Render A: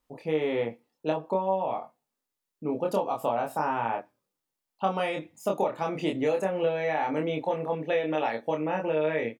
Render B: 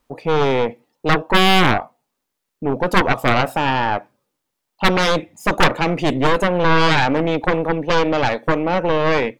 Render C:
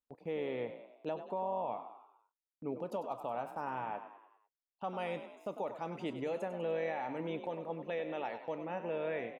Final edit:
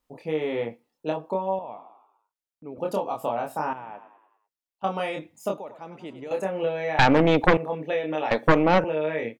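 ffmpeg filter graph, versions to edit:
-filter_complex "[2:a]asplit=3[a][b][c];[1:a]asplit=2[d][e];[0:a]asplit=6[f][g][h][i][j][k];[f]atrim=end=1.592[l];[a]atrim=start=1.588:end=2.782[m];[g]atrim=start=2.778:end=3.732[n];[b]atrim=start=3.728:end=4.842[o];[h]atrim=start=4.838:end=5.582[p];[c]atrim=start=5.578:end=6.312[q];[i]atrim=start=6.308:end=6.992[r];[d]atrim=start=6.988:end=7.572[s];[j]atrim=start=7.568:end=8.312[t];[e]atrim=start=8.308:end=8.842[u];[k]atrim=start=8.838[v];[l][m]acrossfade=d=0.004:c1=hsin:c2=hsin[w];[w][n]acrossfade=d=0.004:c1=hsin:c2=hsin[x];[x][o]acrossfade=d=0.004:c1=hsin:c2=hsin[y];[y][p]acrossfade=d=0.004:c1=hsin:c2=hsin[z];[z][q]acrossfade=d=0.004:c1=hsin:c2=hsin[aa];[aa][r]acrossfade=d=0.004:c1=hsin:c2=hsin[ab];[ab][s]acrossfade=d=0.004:c1=hsin:c2=hsin[ac];[ac][t]acrossfade=d=0.004:c1=hsin:c2=hsin[ad];[ad][u]acrossfade=d=0.004:c1=hsin:c2=hsin[ae];[ae][v]acrossfade=d=0.004:c1=hsin:c2=hsin"

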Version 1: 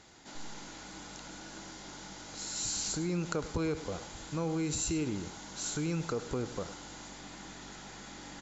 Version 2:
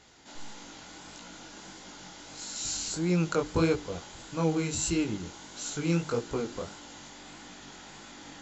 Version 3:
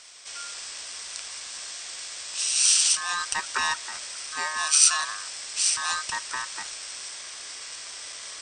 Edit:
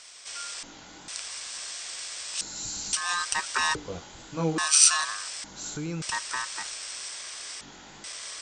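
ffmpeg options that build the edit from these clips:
-filter_complex "[1:a]asplit=3[a][b][c];[0:a]asplit=2[d][e];[2:a]asplit=6[f][g][h][i][j][k];[f]atrim=end=0.632[l];[a]atrim=start=0.628:end=1.082[m];[g]atrim=start=1.078:end=2.412[n];[d]atrim=start=2.408:end=2.932[o];[h]atrim=start=2.928:end=3.752[p];[b]atrim=start=3.748:end=4.582[q];[i]atrim=start=4.578:end=5.442[r];[e]atrim=start=5.438:end=6.022[s];[j]atrim=start=6.018:end=7.612[t];[c]atrim=start=7.608:end=8.042[u];[k]atrim=start=8.038[v];[l][m]acrossfade=d=0.004:c1=hsin:c2=hsin[w];[w][n]acrossfade=d=0.004:c1=hsin:c2=hsin[x];[x][o]acrossfade=d=0.004:c1=hsin:c2=hsin[y];[y][p]acrossfade=d=0.004:c1=hsin:c2=hsin[z];[z][q]acrossfade=d=0.004:c1=hsin:c2=hsin[aa];[aa][r]acrossfade=d=0.004:c1=hsin:c2=hsin[ab];[ab][s]acrossfade=d=0.004:c1=hsin:c2=hsin[ac];[ac][t]acrossfade=d=0.004:c1=hsin:c2=hsin[ad];[ad][u]acrossfade=d=0.004:c1=hsin:c2=hsin[ae];[ae][v]acrossfade=d=0.004:c1=hsin:c2=hsin"

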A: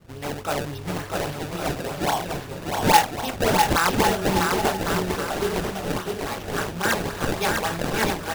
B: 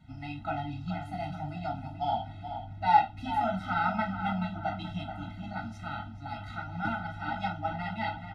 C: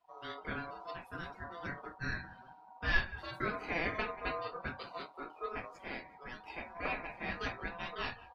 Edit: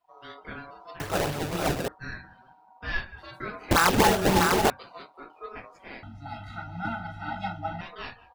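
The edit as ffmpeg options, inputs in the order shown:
-filter_complex "[0:a]asplit=2[a][b];[2:a]asplit=4[c][d][e][f];[c]atrim=end=1.002[g];[a]atrim=start=0.998:end=1.882[h];[d]atrim=start=1.878:end=3.712[i];[b]atrim=start=3.708:end=4.702[j];[e]atrim=start=4.698:end=6.032[k];[1:a]atrim=start=6.028:end=7.812[l];[f]atrim=start=7.808[m];[g][h]acrossfade=d=0.004:c1=hsin:c2=hsin[n];[n][i]acrossfade=d=0.004:c1=hsin:c2=hsin[o];[o][j]acrossfade=d=0.004:c1=hsin:c2=hsin[p];[p][k]acrossfade=d=0.004:c1=hsin:c2=hsin[q];[q][l]acrossfade=d=0.004:c1=hsin:c2=hsin[r];[r][m]acrossfade=d=0.004:c1=hsin:c2=hsin"

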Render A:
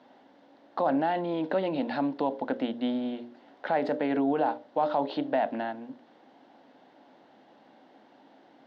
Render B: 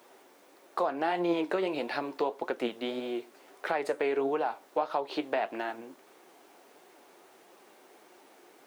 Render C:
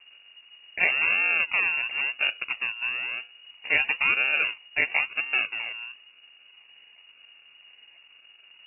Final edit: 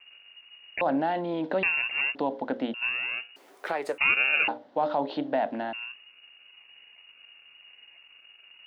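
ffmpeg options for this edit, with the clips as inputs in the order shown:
-filter_complex "[0:a]asplit=3[a][b][c];[2:a]asplit=5[d][e][f][g][h];[d]atrim=end=0.812[i];[a]atrim=start=0.808:end=1.632[j];[e]atrim=start=1.628:end=2.152[k];[b]atrim=start=2.148:end=2.742[l];[f]atrim=start=2.738:end=3.362[m];[1:a]atrim=start=3.358:end=3.982[n];[g]atrim=start=3.978:end=4.482[o];[c]atrim=start=4.478:end=5.732[p];[h]atrim=start=5.728[q];[i][j]acrossfade=d=0.004:c1=hsin:c2=hsin[r];[r][k]acrossfade=d=0.004:c1=hsin:c2=hsin[s];[s][l]acrossfade=d=0.004:c1=hsin:c2=hsin[t];[t][m]acrossfade=d=0.004:c1=hsin:c2=hsin[u];[u][n]acrossfade=d=0.004:c1=hsin:c2=hsin[v];[v][o]acrossfade=d=0.004:c1=hsin:c2=hsin[w];[w][p]acrossfade=d=0.004:c1=hsin:c2=hsin[x];[x][q]acrossfade=d=0.004:c1=hsin:c2=hsin"

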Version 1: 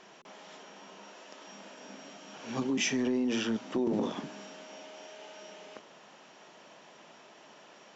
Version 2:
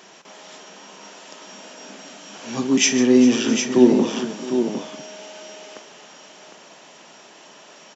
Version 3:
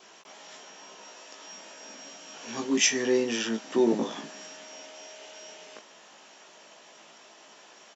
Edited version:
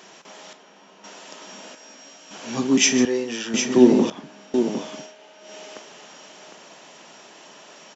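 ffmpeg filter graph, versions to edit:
-filter_complex "[0:a]asplit=3[a][b][c];[2:a]asplit=2[d][e];[1:a]asplit=6[f][g][h][i][j][k];[f]atrim=end=0.532[l];[a]atrim=start=0.528:end=1.042[m];[g]atrim=start=1.038:end=1.752[n];[d]atrim=start=1.748:end=2.312[o];[h]atrim=start=2.308:end=3.052[p];[e]atrim=start=3.048:end=3.542[q];[i]atrim=start=3.538:end=4.102[r];[b]atrim=start=4.098:end=4.542[s];[j]atrim=start=4.538:end=5.15[t];[c]atrim=start=4.99:end=5.56[u];[k]atrim=start=5.4[v];[l][m]acrossfade=d=0.004:c1=hsin:c2=hsin[w];[w][n]acrossfade=d=0.004:c1=hsin:c2=hsin[x];[x][o]acrossfade=d=0.004:c1=hsin:c2=hsin[y];[y][p]acrossfade=d=0.004:c1=hsin:c2=hsin[z];[z][q]acrossfade=d=0.004:c1=hsin:c2=hsin[aa];[aa][r]acrossfade=d=0.004:c1=hsin:c2=hsin[ab];[ab][s]acrossfade=d=0.004:c1=hsin:c2=hsin[ac];[ac][t]acrossfade=d=0.004:c1=hsin:c2=hsin[ad];[ad][u]acrossfade=d=0.16:c1=tri:c2=tri[ae];[ae][v]acrossfade=d=0.16:c1=tri:c2=tri"

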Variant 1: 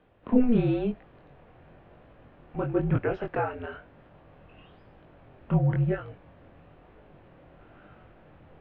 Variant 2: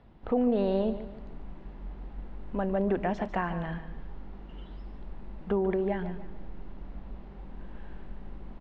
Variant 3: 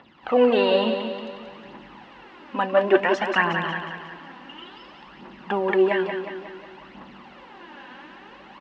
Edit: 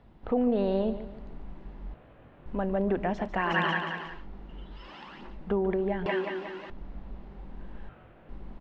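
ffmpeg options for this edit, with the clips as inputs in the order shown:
-filter_complex "[0:a]asplit=2[a][b];[2:a]asplit=3[c][d][e];[1:a]asplit=6[f][g][h][i][j][k];[f]atrim=end=1.942[l];[a]atrim=start=1.938:end=2.462[m];[g]atrim=start=2.458:end=3.6[n];[c]atrim=start=3.36:end=4.27[o];[h]atrim=start=4.03:end=4.94[p];[d]atrim=start=4.7:end=5.39[q];[i]atrim=start=5.15:end=6.062[r];[e]atrim=start=6.058:end=6.702[s];[j]atrim=start=6.698:end=7.892[t];[b]atrim=start=7.888:end=8.292[u];[k]atrim=start=8.288[v];[l][m]acrossfade=d=0.004:c1=hsin:c2=hsin[w];[w][n]acrossfade=d=0.004:c1=hsin:c2=hsin[x];[x][o]acrossfade=d=0.24:c1=tri:c2=tri[y];[y][p]acrossfade=d=0.24:c1=tri:c2=tri[z];[z][q]acrossfade=d=0.24:c1=tri:c2=tri[aa];[aa][r]acrossfade=d=0.24:c1=tri:c2=tri[ab];[ab][s]acrossfade=d=0.004:c1=hsin:c2=hsin[ac];[ac][t]acrossfade=d=0.004:c1=hsin:c2=hsin[ad];[ad][u]acrossfade=d=0.004:c1=hsin:c2=hsin[ae];[ae][v]acrossfade=d=0.004:c1=hsin:c2=hsin"

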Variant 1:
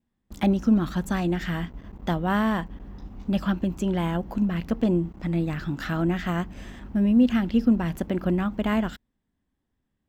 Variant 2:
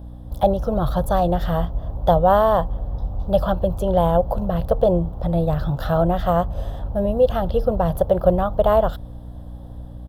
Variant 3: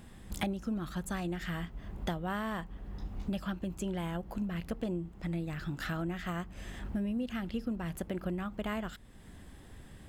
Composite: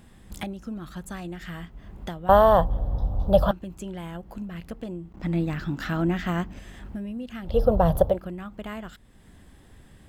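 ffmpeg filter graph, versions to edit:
-filter_complex "[1:a]asplit=2[a][b];[2:a]asplit=4[c][d][e][f];[c]atrim=end=2.292[g];[a]atrim=start=2.288:end=3.512[h];[d]atrim=start=3.508:end=5.122[i];[0:a]atrim=start=5.118:end=6.592[j];[e]atrim=start=6.588:end=7.6[k];[b]atrim=start=7.44:end=8.2[l];[f]atrim=start=8.04[m];[g][h]acrossfade=d=0.004:c1=hsin:c2=hsin[n];[n][i]acrossfade=d=0.004:c1=hsin:c2=hsin[o];[o][j]acrossfade=d=0.004:c1=hsin:c2=hsin[p];[p][k]acrossfade=d=0.004:c1=hsin:c2=hsin[q];[q][l]acrossfade=d=0.16:c1=tri:c2=tri[r];[r][m]acrossfade=d=0.16:c1=tri:c2=tri"

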